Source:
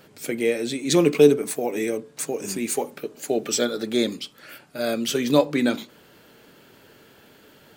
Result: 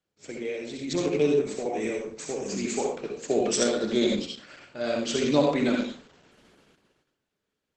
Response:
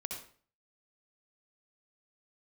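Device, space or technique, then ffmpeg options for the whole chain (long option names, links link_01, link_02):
speakerphone in a meeting room: -filter_complex "[1:a]atrim=start_sample=2205[link_01];[0:a][link_01]afir=irnorm=-1:irlink=0,dynaudnorm=framelen=300:gausssize=9:maxgain=15dB,agate=range=-23dB:threshold=-46dB:ratio=16:detection=peak,volume=-8dB" -ar 48000 -c:a libopus -b:a 12k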